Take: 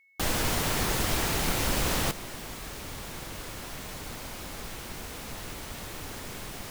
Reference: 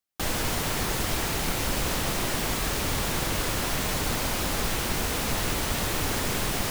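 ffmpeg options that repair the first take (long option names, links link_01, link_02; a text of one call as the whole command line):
ffmpeg -i in.wav -af "bandreject=frequency=2200:width=30,asetnsamples=nb_out_samples=441:pad=0,asendcmd='2.11 volume volume 12dB',volume=0dB" out.wav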